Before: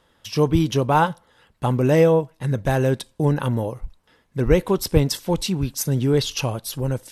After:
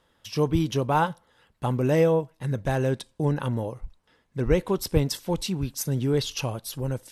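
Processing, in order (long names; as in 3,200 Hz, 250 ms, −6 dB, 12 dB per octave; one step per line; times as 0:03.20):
0:02.64–0:04.72: low-pass filter 11,000 Hz 12 dB per octave
level −5 dB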